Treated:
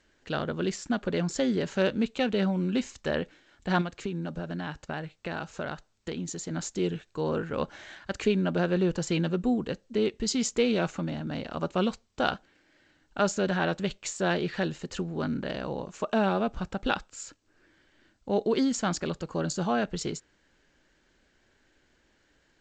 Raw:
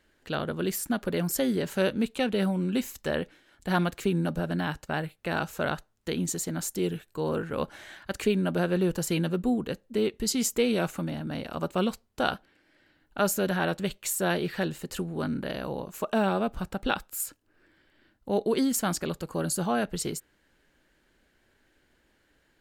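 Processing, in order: 3.81–6.51 compressor 2.5:1, threshold -33 dBFS, peak gain reduction 8 dB; G.722 64 kbps 16000 Hz

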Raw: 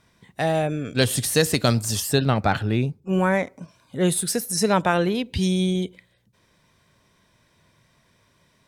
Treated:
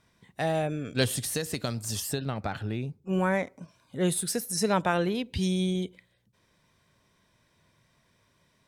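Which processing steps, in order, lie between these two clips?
1.08–3.09 compressor, threshold -22 dBFS, peak gain reduction 8.5 dB; gain -5.5 dB

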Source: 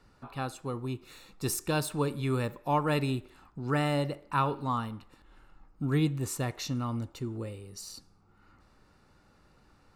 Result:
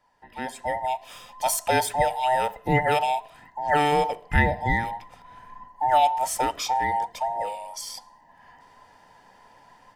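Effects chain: band inversion scrambler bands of 1000 Hz; AGC gain up to 14.5 dB; 3.92–6.01 low shelf 240 Hz +6.5 dB; gain -6.5 dB

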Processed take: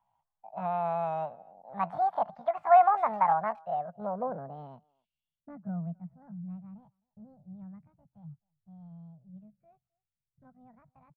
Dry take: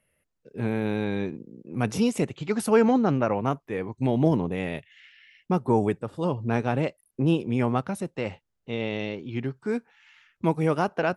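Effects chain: pitch shift +8 st; low-pass sweep 900 Hz -> 130 Hz, 3.14–6.69; EQ curve 170 Hz 0 dB, 360 Hz -27 dB, 650 Hz +3 dB, 2200 Hz +10 dB, 5000 Hz +5 dB; speakerphone echo 0.26 s, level -27 dB; gain -8 dB

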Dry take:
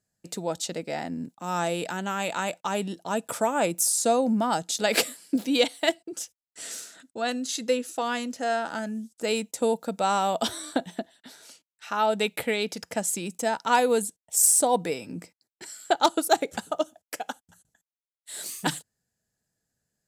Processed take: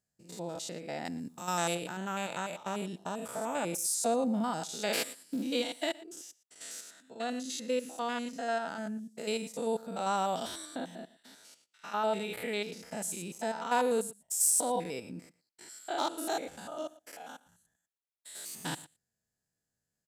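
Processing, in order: stepped spectrum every 0.1 s; 1.05–1.75 high shelf 2400 Hz +12 dB; outdoor echo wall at 20 m, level -20 dB; gain -5 dB

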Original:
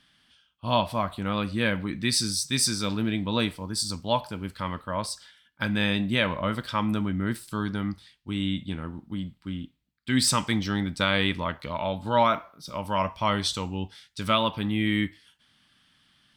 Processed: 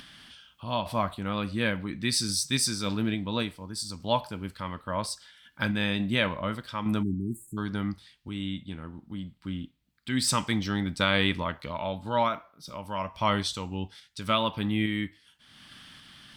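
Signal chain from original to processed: random-step tremolo; upward compressor, threshold -36 dBFS; spectral delete 7.03–7.57, 410–6600 Hz

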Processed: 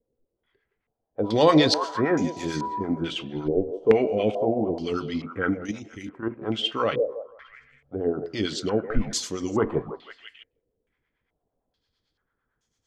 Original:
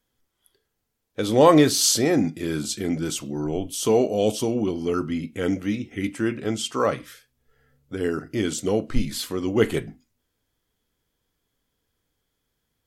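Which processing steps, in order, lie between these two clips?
1.23–2.82 whine 980 Hz -36 dBFS; 5.64–6.42 level quantiser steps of 11 dB; harmonic tremolo 8.9 Hz, depth 70%, crossover 660 Hz; delay with a stepping band-pass 0.162 s, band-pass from 520 Hz, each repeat 0.7 oct, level -8 dB; stepped low-pass 2.3 Hz 490–6400 Hz

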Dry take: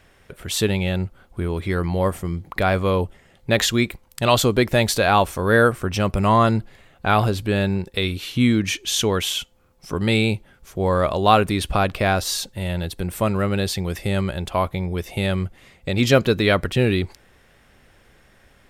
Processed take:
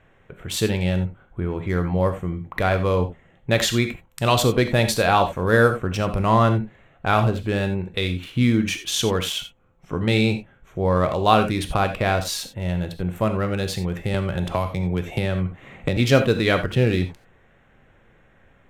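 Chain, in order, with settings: Wiener smoothing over 9 samples; non-linear reverb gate 0.11 s flat, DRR 7 dB; 14.14–15.97 three-band squash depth 100%; gain -1.5 dB

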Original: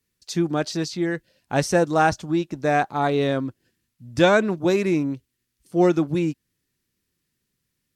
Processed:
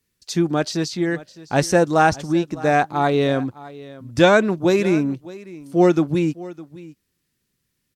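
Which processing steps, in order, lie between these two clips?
echo 0.609 s -19 dB; gain +3 dB

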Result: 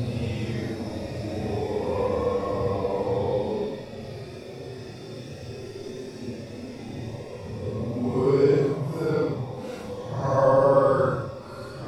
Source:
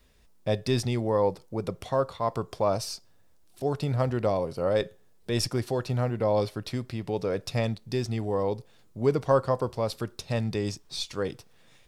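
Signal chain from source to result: diffused feedback echo 0.767 s, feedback 45%, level -8 dB; Paulstretch 8.7×, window 0.05 s, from 8.11

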